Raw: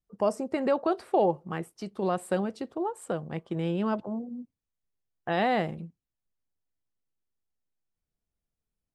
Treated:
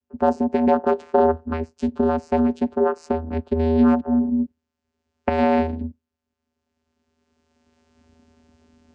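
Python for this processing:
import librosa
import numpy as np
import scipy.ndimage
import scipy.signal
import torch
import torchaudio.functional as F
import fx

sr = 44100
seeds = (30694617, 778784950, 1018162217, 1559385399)

y = fx.recorder_agc(x, sr, target_db=-18.5, rise_db_per_s=14.0, max_gain_db=30)
y = fx.vocoder(y, sr, bands=8, carrier='square', carrier_hz=80.5)
y = F.gain(torch.from_numpy(y), 9.0).numpy()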